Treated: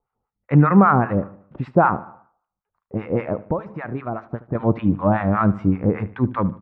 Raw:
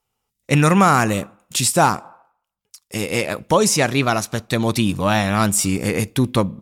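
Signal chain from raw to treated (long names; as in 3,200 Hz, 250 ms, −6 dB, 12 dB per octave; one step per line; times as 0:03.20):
low-pass filter 1,500 Hz 24 dB per octave
0:03.42–0:04.55: downward compressor 2.5 to 1, threshold −27 dBFS, peak gain reduction 11 dB
two-band tremolo in antiphase 5.1 Hz, depth 100%, crossover 900 Hz
repeating echo 75 ms, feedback 43%, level −18 dB
level +4.5 dB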